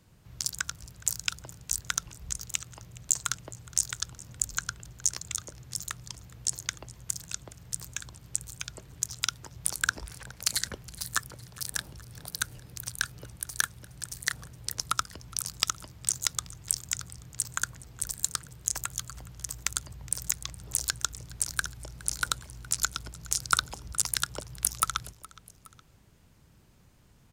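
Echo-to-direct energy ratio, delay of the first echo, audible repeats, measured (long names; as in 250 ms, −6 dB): −20.0 dB, 416 ms, 2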